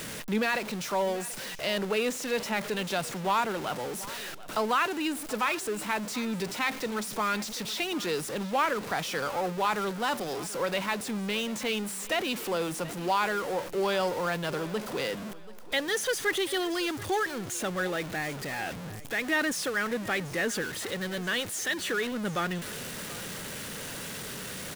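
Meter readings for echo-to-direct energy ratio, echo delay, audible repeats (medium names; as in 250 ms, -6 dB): -17.5 dB, 734 ms, 2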